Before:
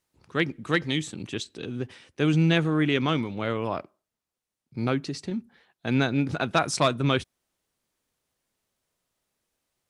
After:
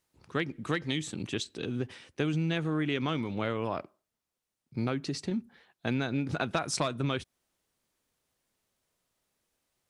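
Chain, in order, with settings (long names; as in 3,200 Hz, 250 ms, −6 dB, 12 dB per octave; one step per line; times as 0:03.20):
downward compressor 10 to 1, threshold −26 dBFS, peak gain reduction 10 dB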